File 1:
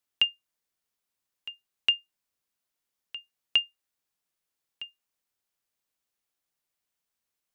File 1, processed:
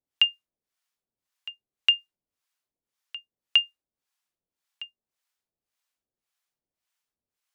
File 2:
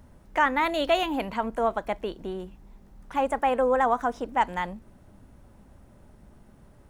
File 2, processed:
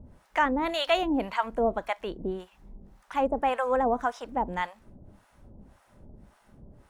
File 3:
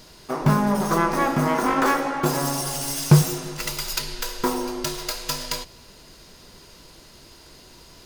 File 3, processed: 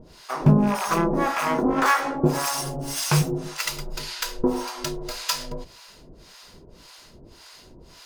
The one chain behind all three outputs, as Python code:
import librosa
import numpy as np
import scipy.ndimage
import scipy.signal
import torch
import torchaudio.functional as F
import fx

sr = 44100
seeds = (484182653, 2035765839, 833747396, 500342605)

y = fx.rattle_buzz(x, sr, strikes_db=-24.0, level_db=-24.0)
y = fx.high_shelf(y, sr, hz=10000.0, db=-6.5)
y = fx.harmonic_tremolo(y, sr, hz=1.8, depth_pct=100, crossover_hz=700.0)
y = y * librosa.db_to_amplitude(4.5)